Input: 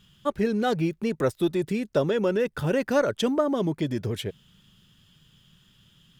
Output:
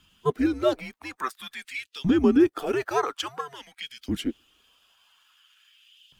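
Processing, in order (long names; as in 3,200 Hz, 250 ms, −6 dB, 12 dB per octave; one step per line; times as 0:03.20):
spectral magnitudes quantised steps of 15 dB
auto-filter high-pass saw up 0.49 Hz 290–3,600 Hz
frequency shifter −140 Hz
AAC 128 kbit/s 44,100 Hz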